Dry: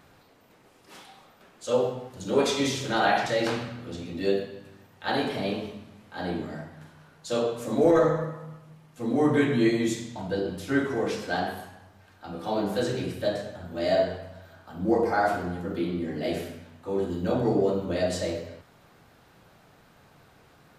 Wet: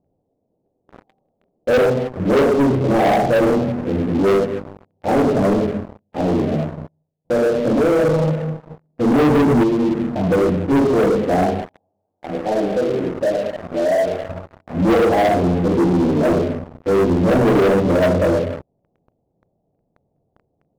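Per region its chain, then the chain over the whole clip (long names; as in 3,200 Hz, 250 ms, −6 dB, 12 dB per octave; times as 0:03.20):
0:05.67–0:08.39: downward expander −46 dBFS + downward compressor 2.5 to 1, threshold −29 dBFS + repeating echo 102 ms, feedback 30%, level −13 dB
0:09.63–0:10.14: mains-hum notches 50/100 Hz + downward compressor, threshold −29 dBFS
0:11.65–0:14.29: downward compressor 2 to 1, threshold −30 dBFS + RIAA equalisation recording + one half of a high-frequency compander encoder only
whole clip: Butterworth low-pass 710 Hz 36 dB per octave; mains-hum notches 60/120 Hz; leveller curve on the samples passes 5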